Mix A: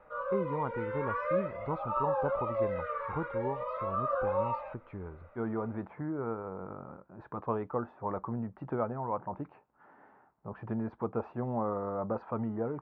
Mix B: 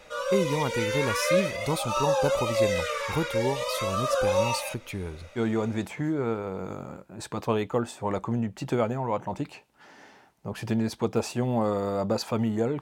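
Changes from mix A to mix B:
background: add Chebyshev high-pass 340 Hz; master: remove four-pole ladder low-pass 1.5 kHz, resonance 40%

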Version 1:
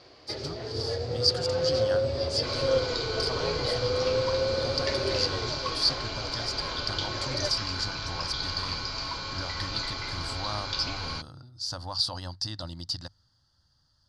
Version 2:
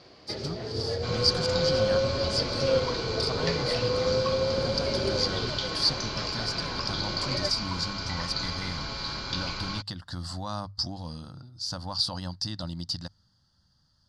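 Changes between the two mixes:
second sound: entry -1.40 s; master: add peaking EQ 190 Hz +12 dB 0.5 oct

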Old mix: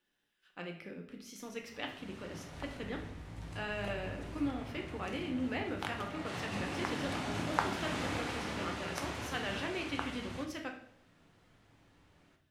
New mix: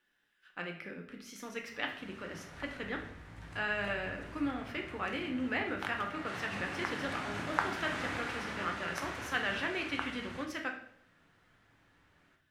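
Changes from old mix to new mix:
background -4.5 dB; master: add peaking EQ 1.6 kHz +8.5 dB 1.2 oct

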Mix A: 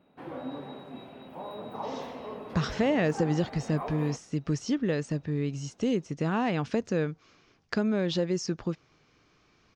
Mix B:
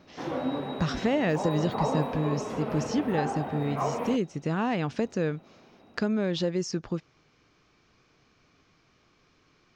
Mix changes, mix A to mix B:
speech: entry -1.75 s; background +7.5 dB

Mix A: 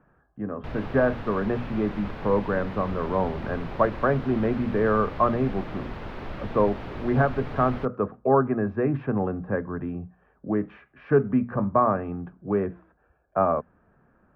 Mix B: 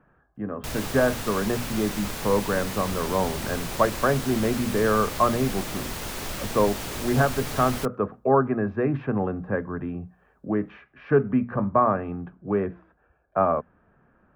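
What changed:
background: remove distance through air 340 m; master: add treble shelf 3.1 kHz +9 dB

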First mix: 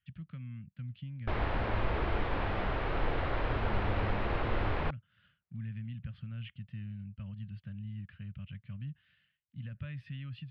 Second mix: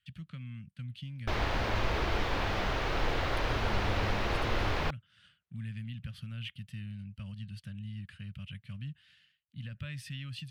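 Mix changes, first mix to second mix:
speech: add treble shelf 4.8 kHz +7 dB; master: remove distance through air 390 m

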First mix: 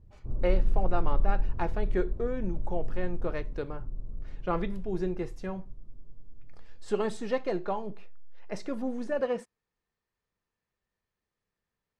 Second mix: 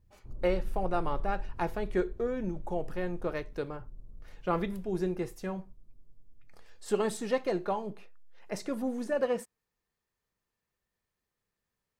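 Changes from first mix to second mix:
background -10.5 dB; master: remove distance through air 73 m

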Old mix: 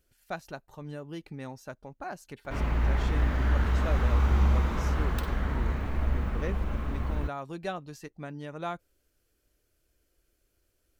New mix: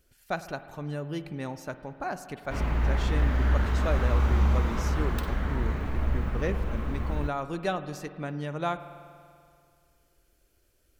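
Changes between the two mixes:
speech +4.0 dB; reverb: on, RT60 2.3 s

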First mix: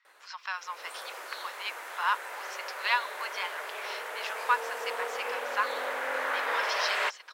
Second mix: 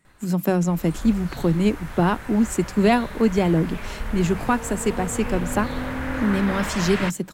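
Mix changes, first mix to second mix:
speech: remove Chebyshev band-pass 990–5500 Hz, order 4; master: remove steep high-pass 430 Hz 36 dB/octave

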